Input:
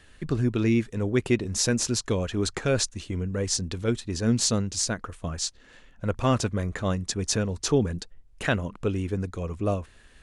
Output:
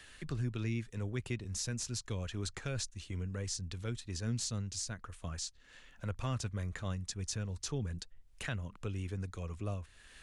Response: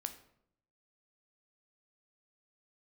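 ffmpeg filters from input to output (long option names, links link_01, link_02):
-filter_complex "[0:a]tiltshelf=frequency=880:gain=-5.5,acrossover=split=150[link_01][link_02];[link_02]acompressor=threshold=-50dB:ratio=2[link_03];[link_01][link_03]amix=inputs=2:normalize=0,volume=-1.5dB"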